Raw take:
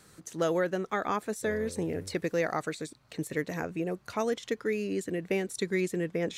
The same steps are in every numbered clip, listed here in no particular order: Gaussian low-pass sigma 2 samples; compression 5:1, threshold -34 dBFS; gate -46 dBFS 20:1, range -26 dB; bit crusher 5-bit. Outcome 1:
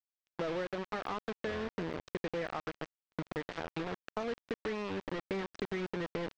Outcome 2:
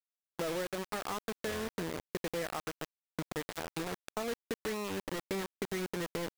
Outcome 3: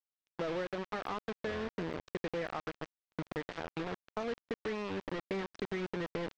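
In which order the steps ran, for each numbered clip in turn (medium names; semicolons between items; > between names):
bit crusher > Gaussian low-pass > gate > compression; Gaussian low-pass > bit crusher > gate > compression; bit crusher > compression > gate > Gaussian low-pass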